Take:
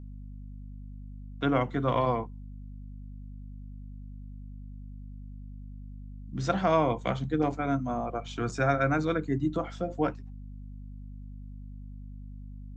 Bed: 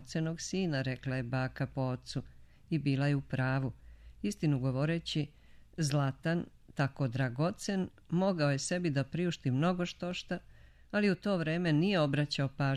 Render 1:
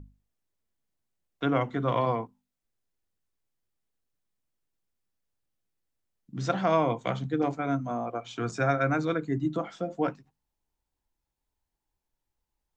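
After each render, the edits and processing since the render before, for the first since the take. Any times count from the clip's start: notches 50/100/150/200/250 Hz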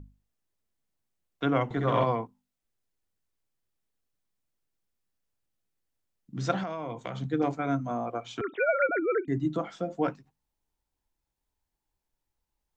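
1.64–2.04 flutter echo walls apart 11.4 m, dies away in 1.5 s; 6.63–7.21 compressor 8:1, threshold -31 dBFS; 8.41–9.28 sine-wave speech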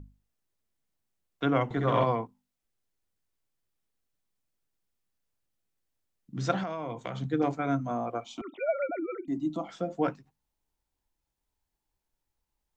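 8.24–9.69 fixed phaser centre 440 Hz, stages 6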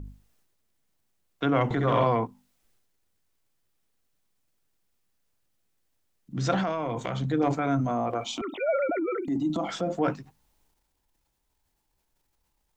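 transient shaper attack -3 dB, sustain +7 dB; in parallel at +2 dB: compressor, threshold -35 dBFS, peak gain reduction 13.5 dB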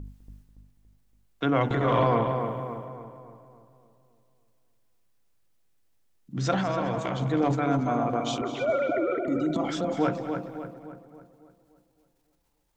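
darkening echo 0.283 s, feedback 50%, low-pass 2500 Hz, level -6 dB; warbling echo 0.205 s, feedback 34%, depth 53 cents, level -14 dB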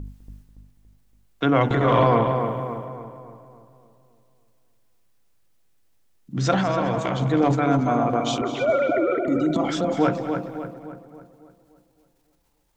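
gain +5 dB

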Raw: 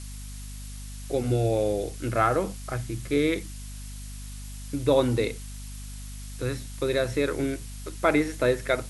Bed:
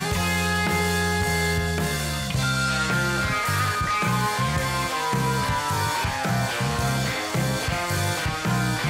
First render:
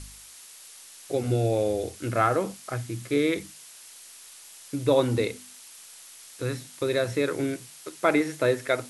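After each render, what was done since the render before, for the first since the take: de-hum 50 Hz, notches 5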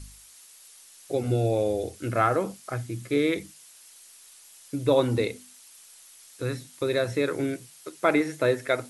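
denoiser 6 dB, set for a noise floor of -48 dBFS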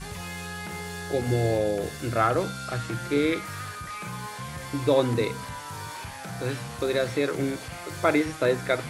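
add bed -13 dB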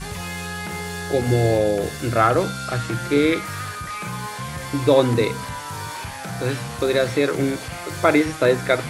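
gain +6 dB; limiter -3 dBFS, peak gain reduction 1 dB

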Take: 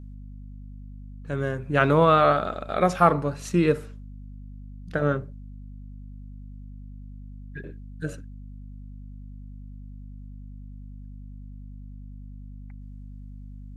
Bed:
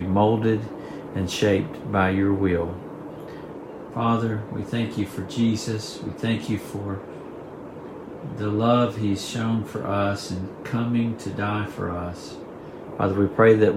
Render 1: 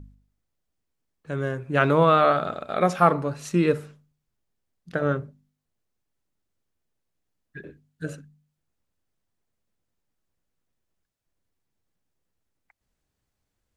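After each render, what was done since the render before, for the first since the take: de-hum 50 Hz, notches 5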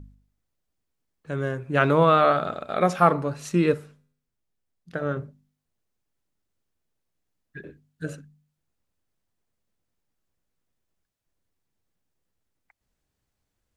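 3.74–5.17 resonator 83 Hz, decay 0.7 s, mix 40%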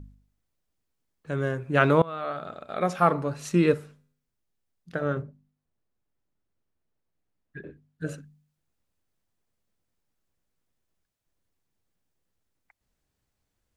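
2.02–3.52 fade in, from -23.5 dB; 5.21–8.05 high shelf 2400 Hz -> 3800 Hz -11.5 dB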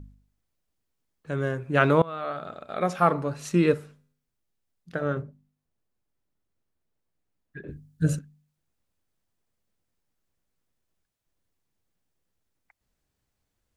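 7.68–8.19 tone controls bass +15 dB, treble +11 dB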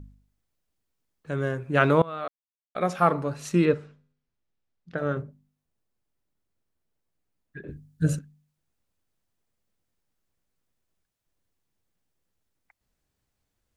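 2.28–2.75 mute; 3.65–4.98 air absorption 120 m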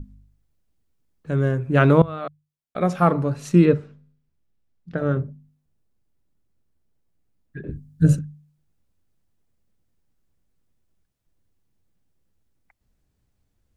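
low shelf 330 Hz +11.5 dB; notches 50/100/150 Hz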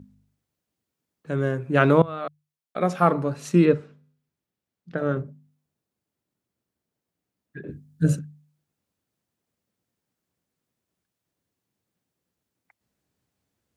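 HPF 88 Hz; low shelf 130 Hz -11 dB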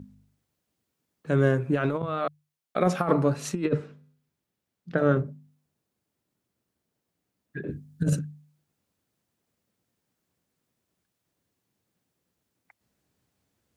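negative-ratio compressor -21 dBFS, ratio -0.5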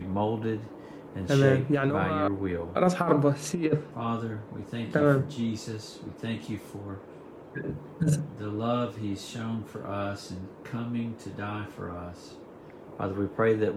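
add bed -9 dB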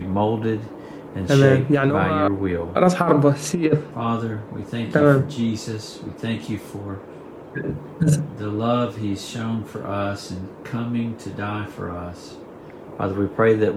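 gain +7.5 dB; limiter -2 dBFS, peak gain reduction 2.5 dB

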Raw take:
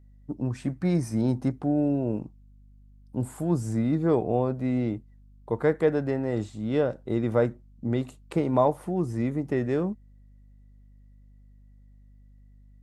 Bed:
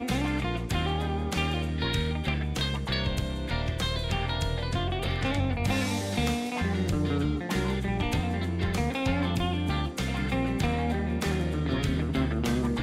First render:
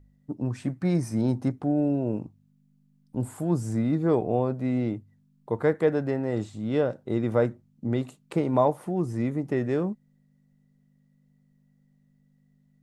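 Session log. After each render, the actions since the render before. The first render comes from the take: de-hum 50 Hz, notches 2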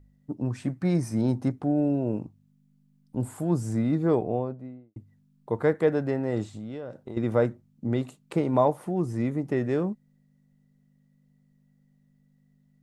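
4.03–4.96 studio fade out; 6.54–7.17 compressor 8:1, threshold -33 dBFS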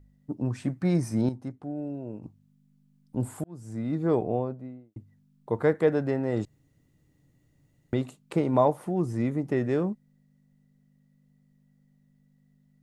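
1.29–2.23 gain -10 dB; 3.44–4.23 fade in; 6.45–7.93 room tone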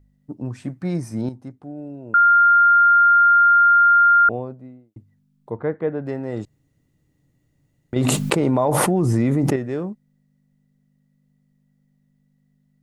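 2.14–4.29 bleep 1400 Hz -10 dBFS; 5.5–6.06 air absorption 430 m; 7.96–9.56 fast leveller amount 100%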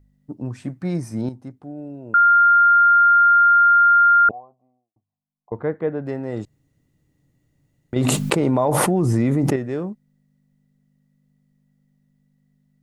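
4.31–5.52 vocal tract filter a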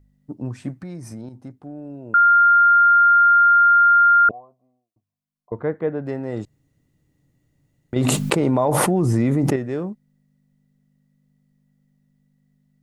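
0.71–1.97 compressor 12:1, threshold -30 dBFS; 4.25–5.61 Butterworth band-stop 820 Hz, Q 5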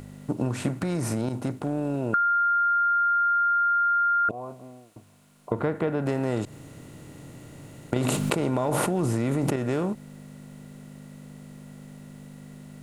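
per-bin compression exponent 0.6; compressor, threshold -22 dBFS, peak gain reduction 10.5 dB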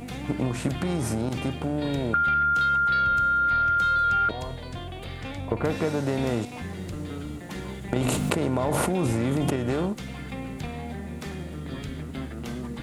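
add bed -7.5 dB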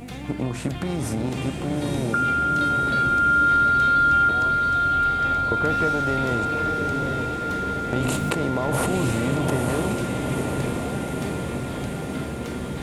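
diffused feedback echo 0.917 s, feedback 68%, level -3 dB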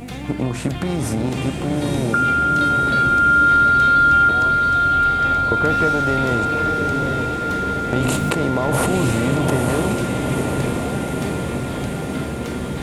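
gain +4.5 dB; limiter -3 dBFS, peak gain reduction 1 dB

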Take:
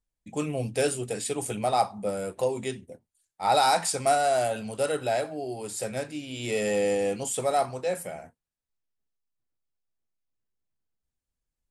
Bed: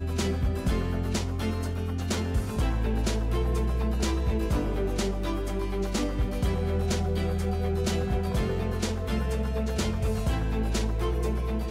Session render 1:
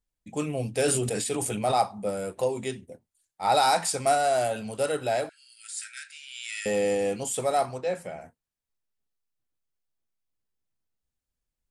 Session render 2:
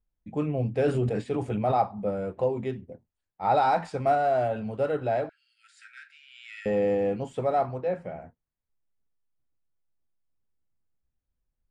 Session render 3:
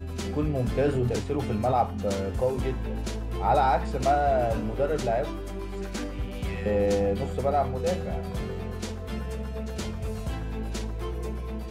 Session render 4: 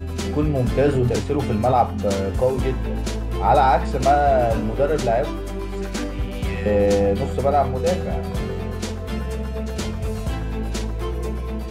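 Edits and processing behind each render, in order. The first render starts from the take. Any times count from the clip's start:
0.85–1.78 sustainer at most 26 dB/s; 5.29–6.66 brick-wall FIR band-pass 1300–11000 Hz; 7.78–8.21 air absorption 77 m
Bessel low-pass 1500 Hz, order 2; low shelf 190 Hz +6.5 dB
add bed -5 dB
gain +6.5 dB

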